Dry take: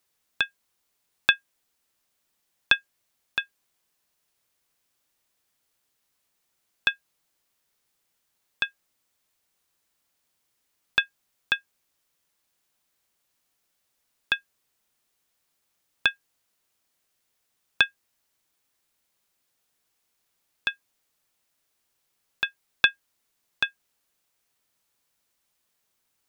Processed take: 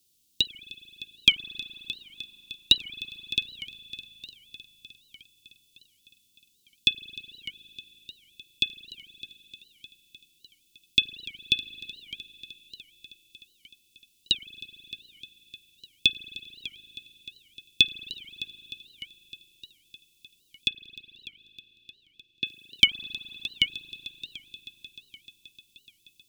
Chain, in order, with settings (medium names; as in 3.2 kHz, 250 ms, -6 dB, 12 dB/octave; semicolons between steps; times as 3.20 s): inverse Chebyshev band-stop 730–1500 Hz, stop band 60 dB; hard clipper -11 dBFS, distortion -31 dB; 20.68–22.46 s: band-pass 120–2700 Hz; multi-head delay 305 ms, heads first and second, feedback 65%, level -19 dB; spring tank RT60 3.7 s, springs 37 ms, chirp 20 ms, DRR 14 dB; warped record 78 rpm, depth 250 cents; trim +7.5 dB